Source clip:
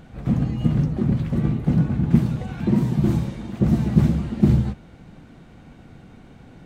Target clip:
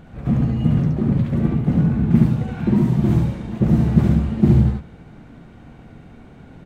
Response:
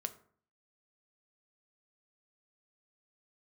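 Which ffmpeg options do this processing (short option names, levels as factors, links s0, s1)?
-filter_complex "[0:a]aecho=1:1:72:0.708,asplit=2[s0][s1];[1:a]atrim=start_sample=2205,lowpass=3400[s2];[s1][s2]afir=irnorm=-1:irlink=0,volume=0.75[s3];[s0][s3]amix=inputs=2:normalize=0,volume=0.708"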